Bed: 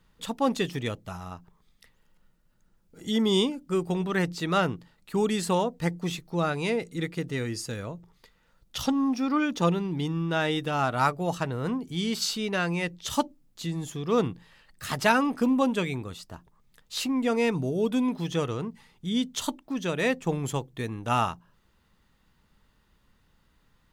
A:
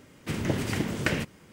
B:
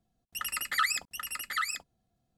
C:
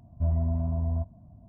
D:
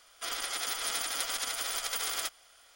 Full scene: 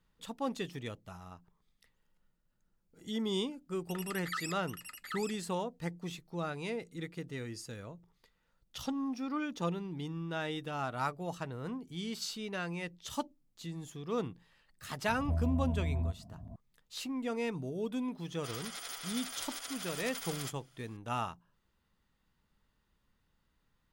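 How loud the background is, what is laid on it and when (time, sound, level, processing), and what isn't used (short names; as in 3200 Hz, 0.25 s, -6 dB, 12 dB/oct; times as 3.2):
bed -10.5 dB
3.54 add B -11 dB
15.08 add C -6 dB + three-band squash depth 70%
18.22 add D -9 dB
not used: A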